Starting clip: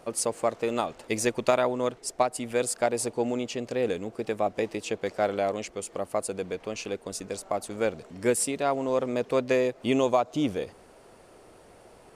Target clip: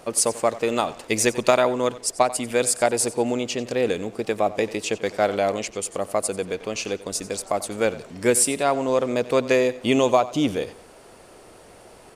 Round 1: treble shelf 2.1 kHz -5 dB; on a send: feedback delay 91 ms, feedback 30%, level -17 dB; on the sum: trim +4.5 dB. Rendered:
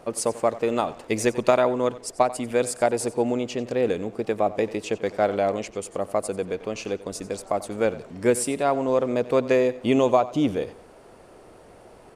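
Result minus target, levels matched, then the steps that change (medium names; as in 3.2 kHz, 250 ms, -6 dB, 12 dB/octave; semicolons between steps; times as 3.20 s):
4 kHz band -5.5 dB
change: treble shelf 2.1 kHz +4.5 dB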